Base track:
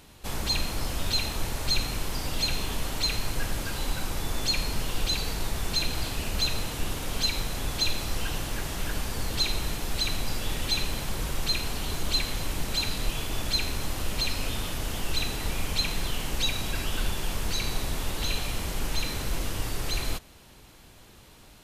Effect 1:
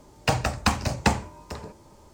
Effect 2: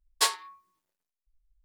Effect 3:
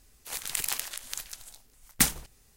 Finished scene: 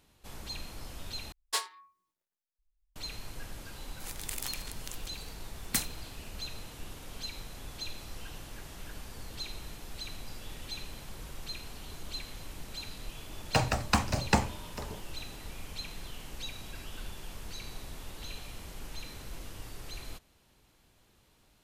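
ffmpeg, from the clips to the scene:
-filter_complex "[0:a]volume=0.211,asplit=2[s0][s1];[s0]atrim=end=1.324[s2];[2:a]atrim=end=1.64,asetpts=PTS-STARTPTS,volume=0.422[s3];[s1]atrim=start=2.956[s4];[3:a]atrim=end=2.56,asetpts=PTS-STARTPTS,volume=0.398,afade=t=in:d=0.004:c=hsin,afade=t=out:st=2.556:d=0.004:c=hsin,adelay=3740[s5];[1:a]atrim=end=2.13,asetpts=PTS-STARTPTS,volume=0.631,afade=t=in:d=0.004:c=hsin,afade=t=out:st=2.126:d=0.004:c=hsin,adelay=13270[s6];[s2][s3]acrossfade=d=0.004:c1=hsin:c2=hsin[s7];[s7][s4]acrossfade=d=0.004:c1=hsin:c2=hsin[s8];[s8][s5][s6]amix=inputs=3:normalize=0"

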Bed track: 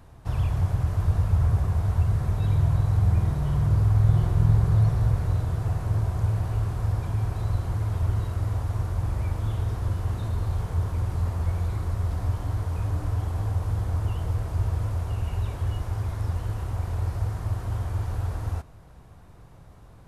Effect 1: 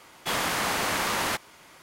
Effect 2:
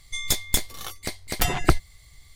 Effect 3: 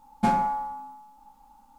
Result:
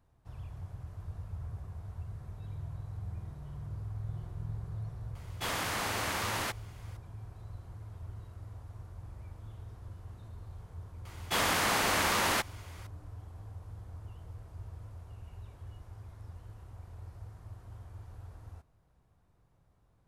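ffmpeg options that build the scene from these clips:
-filter_complex "[1:a]asplit=2[s0][s1];[0:a]volume=0.106[s2];[s0]atrim=end=1.82,asetpts=PTS-STARTPTS,volume=0.447,afade=t=in:d=0.004:c=hsin,afade=t=out:st=1.816:d=0.004:c=hsin,adelay=5150[s3];[s1]atrim=end=1.82,asetpts=PTS-STARTPTS,volume=0.841,afade=t=in:d=0.004:c=hsin,afade=t=out:st=1.816:d=0.004:c=hsin,adelay=11050[s4];[s2][s3][s4]amix=inputs=3:normalize=0"

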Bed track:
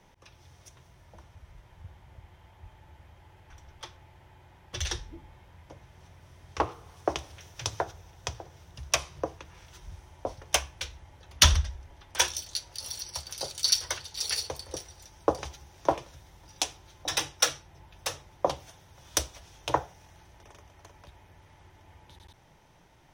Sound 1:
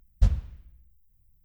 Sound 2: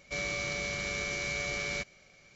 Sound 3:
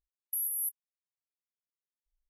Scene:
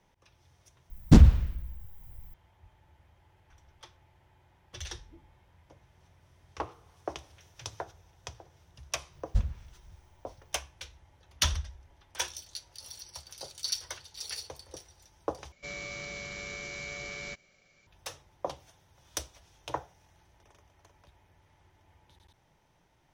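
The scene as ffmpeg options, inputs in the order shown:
-filter_complex "[1:a]asplit=2[s0][s1];[0:a]volume=0.376[s2];[s0]aeval=exprs='0.422*sin(PI/2*3.98*val(0)/0.422)':c=same[s3];[s2]asplit=2[s4][s5];[s4]atrim=end=15.524[s6];[2:a]atrim=end=2.35,asetpts=PTS-STARTPTS,volume=0.501[s7];[s5]atrim=start=17.866[s8];[s3]atrim=end=1.44,asetpts=PTS-STARTPTS,volume=0.944,afade=t=in:d=0.004:c=hsin,afade=t=out:st=1.436:d=0.004:c=hsin,adelay=900[s9];[s1]atrim=end=1.44,asetpts=PTS-STARTPTS,volume=0.473,afade=t=in:d=0.004:c=hsin,afade=t=out:st=1.436:d=0.004:c=hsin,adelay=9130[s10];[s6][s7]acrossfade=d=0.004:c1=hsin:c2=hsin[s11];[s11][s8]acrossfade=d=0.004:c1=hsin:c2=hsin[s12];[s12][s9][s10]amix=inputs=3:normalize=0"

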